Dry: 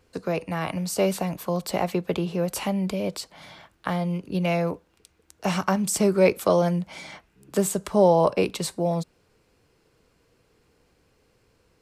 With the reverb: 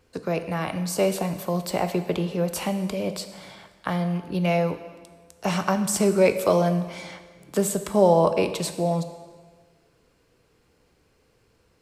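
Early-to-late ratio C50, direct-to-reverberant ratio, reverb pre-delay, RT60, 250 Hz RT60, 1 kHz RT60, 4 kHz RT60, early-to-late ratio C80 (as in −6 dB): 10.5 dB, 9.0 dB, 8 ms, 1.5 s, 1.4 s, 1.5 s, 1.4 s, 12.0 dB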